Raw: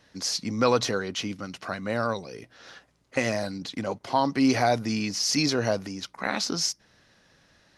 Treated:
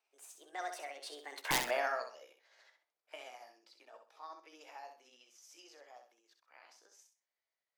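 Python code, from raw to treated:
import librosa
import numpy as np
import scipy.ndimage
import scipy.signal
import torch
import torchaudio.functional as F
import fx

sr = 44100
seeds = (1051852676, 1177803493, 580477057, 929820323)

y = fx.pitch_heads(x, sr, semitones=4.5)
y = fx.doppler_pass(y, sr, speed_mps=37, closest_m=2.7, pass_at_s=1.57)
y = scipy.signal.sosfilt(scipy.signal.butter(4, 480.0, 'highpass', fs=sr, output='sos'), y)
y = fx.peak_eq(y, sr, hz=7200.0, db=-7.5, octaves=0.65)
y = (np.mod(10.0 ** (27.5 / 20.0) * y + 1.0, 2.0) - 1.0) / 10.0 ** (27.5 / 20.0)
y = fx.echo_feedback(y, sr, ms=64, feedback_pct=27, wet_db=-7.0)
y = y * librosa.db_to_amplitude(5.5)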